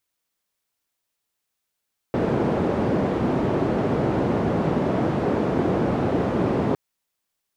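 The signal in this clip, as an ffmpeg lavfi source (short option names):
-f lavfi -i "anoisesrc=c=white:d=4.61:r=44100:seed=1,highpass=f=110,lowpass=f=420,volume=0.8dB"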